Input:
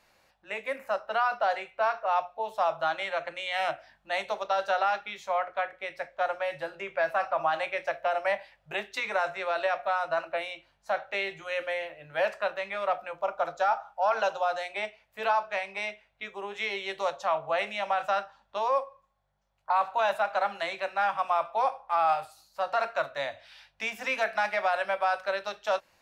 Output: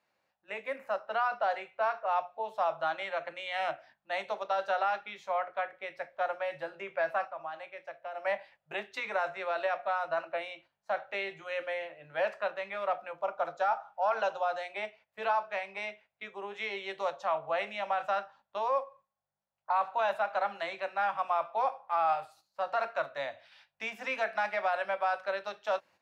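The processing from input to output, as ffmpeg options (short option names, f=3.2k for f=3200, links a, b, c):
-filter_complex "[0:a]asplit=3[a][b][c];[a]atrim=end=7.33,asetpts=PTS-STARTPTS,afade=t=out:st=7.18:d=0.15:silence=0.316228[d];[b]atrim=start=7.33:end=8.14,asetpts=PTS-STARTPTS,volume=-10dB[e];[c]atrim=start=8.14,asetpts=PTS-STARTPTS,afade=t=in:d=0.15:silence=0.316228[f];[d][e][f]concat=n=3:v=0:a=1,highpass=130,agate=range=-9dB:threshold=-52dB:ratio=16:detection=peak,highshelf=f=5.1k:g=-10,volume=-3dB"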